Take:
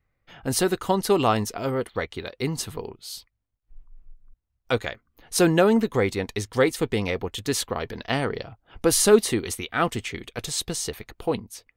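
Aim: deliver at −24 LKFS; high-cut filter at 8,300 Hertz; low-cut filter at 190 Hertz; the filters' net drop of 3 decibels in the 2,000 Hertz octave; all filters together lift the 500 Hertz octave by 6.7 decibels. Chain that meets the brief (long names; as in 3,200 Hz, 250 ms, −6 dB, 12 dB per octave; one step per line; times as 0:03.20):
high-pass filter 190 Hz
low-pass filter 8,300 Hz
parametric band 500 Hz +8.5 dB
parametric band 2,000 Hz −4.5 dB
level −3.5 dB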